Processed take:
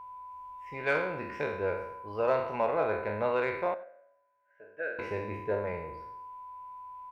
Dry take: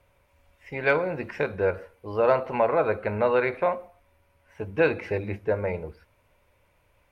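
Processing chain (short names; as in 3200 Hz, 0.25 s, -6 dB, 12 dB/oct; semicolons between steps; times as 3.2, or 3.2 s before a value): spectral trails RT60 0.80 s; whine 1000 Hz -34 dBFS; added harmonics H 7 -35 dB, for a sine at -7 dBFS; 3.74–4.99 double band-pass 970 Hz, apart 1.4 oct; on a send: echo 93 ms -20.5 dB; on the sum: gain -8 dB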